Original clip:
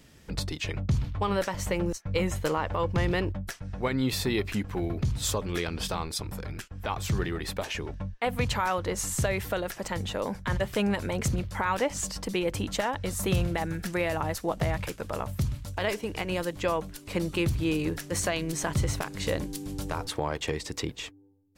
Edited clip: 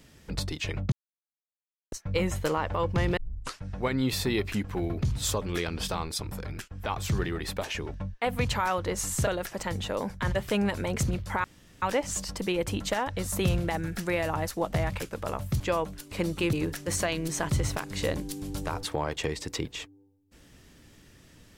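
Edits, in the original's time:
0.92–1.92 mute
3.17 tape start 0.43 s
9.27–9.52 cut
11.69 insert room tone 0.38 s
15.47–16.56 cut
17.49–17.77 cut

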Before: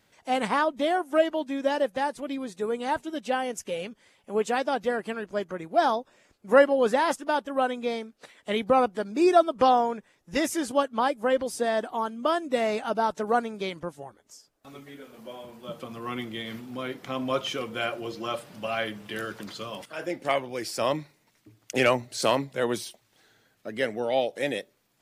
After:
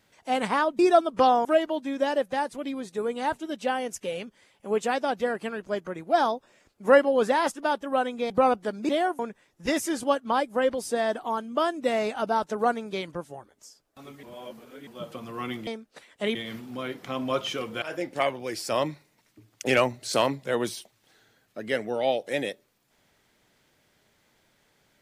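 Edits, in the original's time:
0.79–1.09 swap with 9.21–9.87
7.94–8.62 move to 16.35
14.91–15.55 reverse
17.82–19.91 cut

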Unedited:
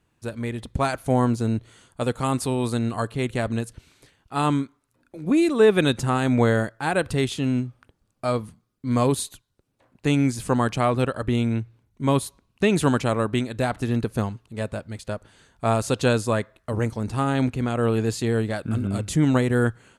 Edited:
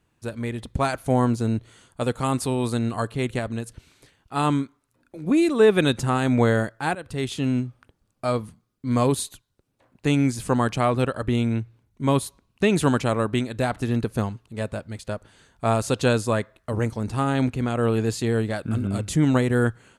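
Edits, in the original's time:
3.39–3.66 gain -3.5 dB
6.95–7.41 fade in, from -19 dB

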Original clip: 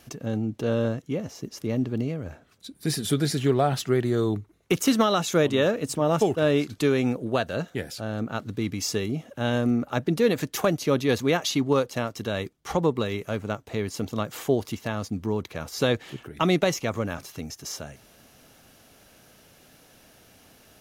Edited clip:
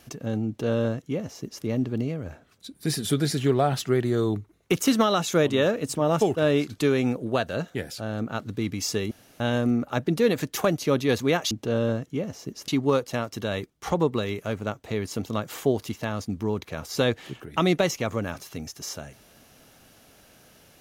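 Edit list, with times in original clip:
0.47–1.64 copy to 11.51
9.11–9.4 room tone

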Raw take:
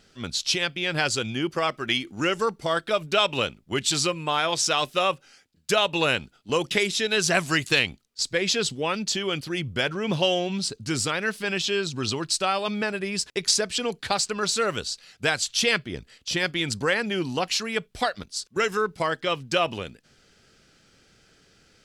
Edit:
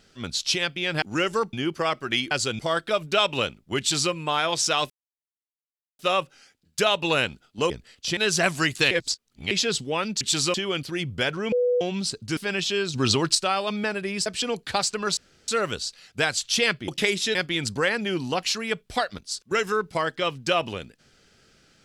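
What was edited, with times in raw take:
1.02–1.3 swap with 2.08–2.59
3.79–4.12 copy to 9.12
4.9 insert silence 1.09 s
6.61–7.08 swap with 15.93–16.4
7.82–8.42 reverse
10.1–10.39 bleep 492 Hz -18.5 dBFS
10.95–11.35 cut
11.92–12.33 gain +6 dB
13.24–13.62 cut
14.53 insert room tone 0.31 s

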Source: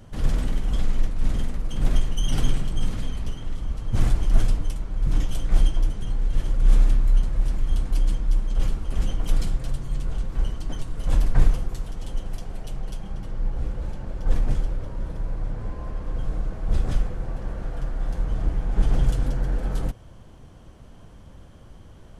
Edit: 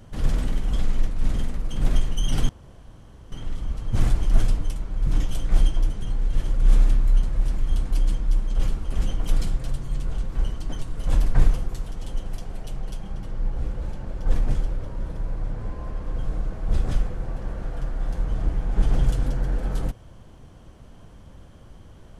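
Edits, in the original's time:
2.49–3.32 room tone

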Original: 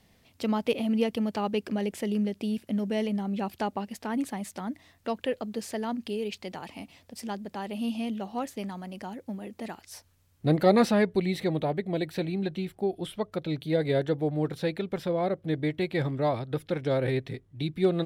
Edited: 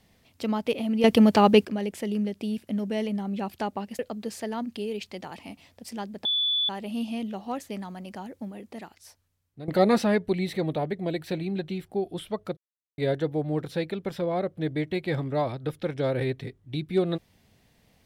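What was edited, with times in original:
1.04–1.65 gain +11.5 dB
3.99–5.3 cut
7.56 add tone 3460 Hz -22 dBFS 0.44 s
9.22–10.55 fade out, to -19 dB
13.44–13.85 mute

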